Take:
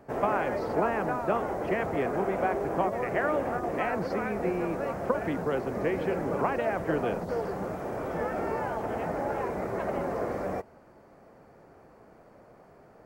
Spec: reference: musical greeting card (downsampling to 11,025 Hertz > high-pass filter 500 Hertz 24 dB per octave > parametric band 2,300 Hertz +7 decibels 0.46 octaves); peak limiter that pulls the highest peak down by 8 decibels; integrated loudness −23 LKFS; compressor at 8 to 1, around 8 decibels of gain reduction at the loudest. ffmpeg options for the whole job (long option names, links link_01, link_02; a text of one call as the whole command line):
ffmpeg -i in.wav -af "acompressor=threshold=-30dB:ratio=8,alimiter=level_in=4dB:limit=-24dB:level=0:latency=1,volume=-4dB,aresample=11025,aresample=44100,highpass=frequency=500:width=0.5412,highpass=frequency=500:width=1.3066,equalizer=frequency=2300:width_type=o:width=0.46:gain=7,volume=16dB" out.wav